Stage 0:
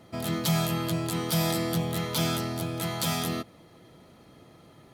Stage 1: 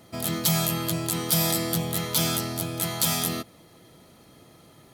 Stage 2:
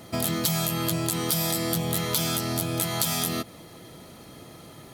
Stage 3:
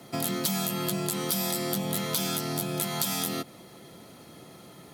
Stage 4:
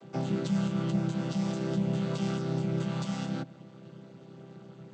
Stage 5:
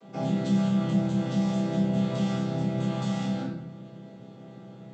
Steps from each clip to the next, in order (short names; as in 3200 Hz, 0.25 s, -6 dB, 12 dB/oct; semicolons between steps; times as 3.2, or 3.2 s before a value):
high shelf 5100 Hz +11 dB
compressor, threshold -30 dBFS, peak gain reduction 11.5 dB; gain +7 dB
frequency shift +28 Hz; gain -3 dB
chord vocoder major triad, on C3; gain +2 dB
shoebox room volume 180 m³, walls mixed, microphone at 1.8 m; gain -3.5 dB